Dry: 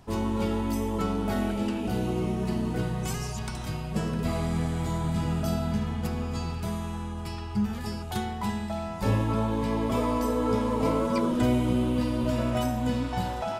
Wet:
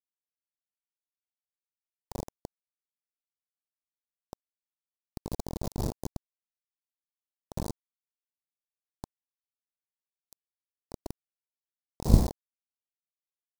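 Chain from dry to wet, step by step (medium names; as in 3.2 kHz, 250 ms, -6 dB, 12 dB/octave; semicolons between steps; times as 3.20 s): one-bit comparator; wind noise 100 Hz -24 dBFS; small resonant body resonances 210/640 Hz, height 6 dB, ringing for 75 ms; Chebyshev shaper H 3 -13 dB, 5 -28 dB, 6 -28 dB, 7 -31 dB, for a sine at 4.5 dBFS; bit crusher 4-bit; high-order bell 2 kHz -15.5 dB; trim -6.5 dB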